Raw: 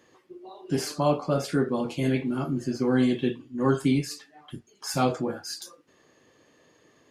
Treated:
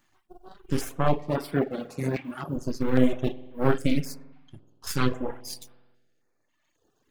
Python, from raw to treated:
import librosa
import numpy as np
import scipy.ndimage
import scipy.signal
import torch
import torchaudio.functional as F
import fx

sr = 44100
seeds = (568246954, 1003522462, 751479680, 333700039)

y = fx.law_mismatch(x, sr, coded='A')
y = np.maximum(y, 0.0)
y = fx.highpass(y, sr, hz=110.0, slope=12, at=(1.16, 2.56))
y = fx.rev_spring(y, sr, rt60_s=1.3, pass_ms=(47,), chirp_ms=75, drr_db=6.5)
y = fx.dereverb_blind(y, sr, rt60_s=1.7)
y = fx.high_shelf(y, sr, hz=6500.0, db=-11.5, at=(4.14, 4.87))
y = fx.filter_held_notch(y, sr, hz=3.7, low_hz=470.0, high_hz=6600.0)
y = y * 10.0 ** (5.0 / 20.0)